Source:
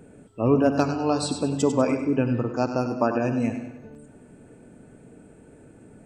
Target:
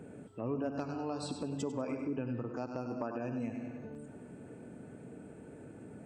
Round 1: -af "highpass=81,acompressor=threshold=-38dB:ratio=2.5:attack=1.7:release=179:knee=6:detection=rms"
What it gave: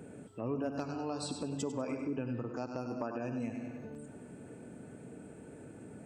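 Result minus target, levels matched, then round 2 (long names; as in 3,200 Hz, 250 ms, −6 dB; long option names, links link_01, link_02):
8,000 Hz band +4.5 dB
-af "highpass=81,highshelf=frequency=4000:gain=-6.5,acompressor=threshold=-38dB:ratio=2.5:attack=1.7:release=179:knee=6:detection=rms"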